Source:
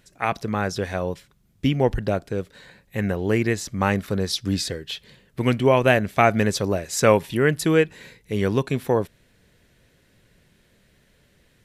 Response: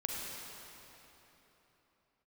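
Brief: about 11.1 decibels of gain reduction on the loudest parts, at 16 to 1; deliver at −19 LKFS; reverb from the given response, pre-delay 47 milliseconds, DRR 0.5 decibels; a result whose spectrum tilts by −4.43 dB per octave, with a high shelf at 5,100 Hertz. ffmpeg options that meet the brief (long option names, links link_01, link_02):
-filter_complex "[0:a]highshelf=frequency=5100:gain=8.5,acompressor=threshold=-22dB:ratio=16,asplit=2[link_01][link_02];[1:a]atrim=start_sample=2205,adelay=47[link_03];[link_02][link_03]afir=irnorm=-1:irlink=0,volume=-3.5dB[link_04];[link_01][link_04]amix=inputs=2:normalize=0,volume=7dB"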